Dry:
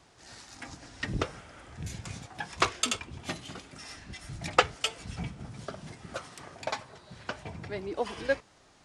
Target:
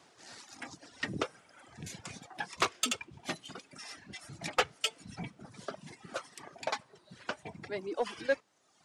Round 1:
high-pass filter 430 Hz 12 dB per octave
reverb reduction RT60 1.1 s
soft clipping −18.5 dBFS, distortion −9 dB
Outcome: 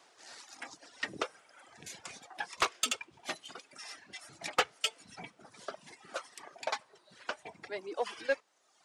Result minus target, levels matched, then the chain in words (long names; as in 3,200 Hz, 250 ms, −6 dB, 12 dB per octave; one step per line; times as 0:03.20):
250 Hz band −7.0 dB
high-pass filter 180 Hz 12 dB per octave
reverb reduction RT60 1.1 s
soft clipping −18.5 dBFS, distortion −9 dB